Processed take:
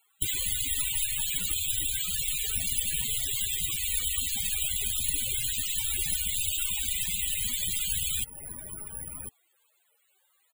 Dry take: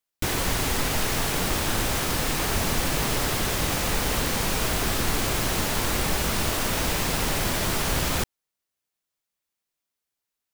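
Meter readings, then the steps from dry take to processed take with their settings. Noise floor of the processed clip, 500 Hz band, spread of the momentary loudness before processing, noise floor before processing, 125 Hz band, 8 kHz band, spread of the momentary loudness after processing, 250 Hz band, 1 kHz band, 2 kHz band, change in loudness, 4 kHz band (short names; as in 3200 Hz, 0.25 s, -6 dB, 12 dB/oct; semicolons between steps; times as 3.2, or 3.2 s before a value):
-70 dBFS, -26.5 dB, 0 LU, -85 dBFS, -13.5 dB, +0.5 dB, 10 LU, -20.0 dB, -27.0 dB, -10.5 dB, -2.5 dB, -3.5 dB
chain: bell 3500 Hz +14.5 dB 2.1 oct; outdoor echo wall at 180 m, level -17 dB; compressor 2.5:1, threshold -29 dBFS, peak gain reduction 9.5 dB; band noise 300–4600 Hz -67 dBFS; loudest bins only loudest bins 16; careless resampling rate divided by 4×, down none, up zero stuff; gain -1 dB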